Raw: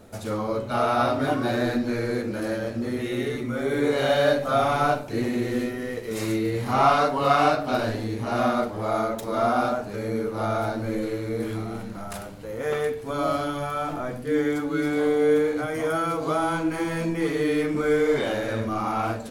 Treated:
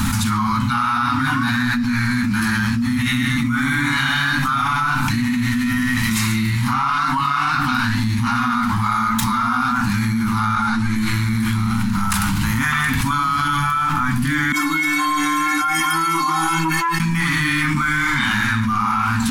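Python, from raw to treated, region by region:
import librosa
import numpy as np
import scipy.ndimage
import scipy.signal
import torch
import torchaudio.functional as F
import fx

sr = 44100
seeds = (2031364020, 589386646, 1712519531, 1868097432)

y = fx.chain(x, sr, fx.lowpass(hz=11000.0, slope=24),
    fx.ensemble(), at=(10.55, 10.96))
y = fx.chain(y, sr, fx.low_shelf_res(hz=220.0, db=-13.5, q=3.0),
    fx.stiff_resonator(f0_hz=160.0, decay_s=0.46, stiffness=0.03),
    fx.transformer_sat(knee_hz=670.0), at=(14.52, 17.0))
y = scipy.signal.sosfilt(scipy.signal.ellip(3, 1.0, 40, [250.0, 940.0], 'bandstop', fs=sr, output='sos'), y)
y = fx.dynamic_eq(y, sr, hz=1500.0, q=1.3, threshold_db=-41.0, ratio=4.0, max_db=5)
y = fx.env_flatten(y, sr, amount_pct=100)
y = F.gain(torch.from_numpy(y), -3.0).numpy()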